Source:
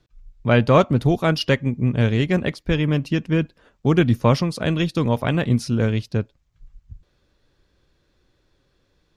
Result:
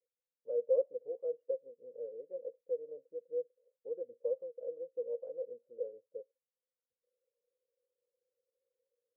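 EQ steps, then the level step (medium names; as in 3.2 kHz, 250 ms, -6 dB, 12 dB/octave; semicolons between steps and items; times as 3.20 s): Butterworth band-pass 500 Hz, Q 8; distance through air 360 m; -6.0 dB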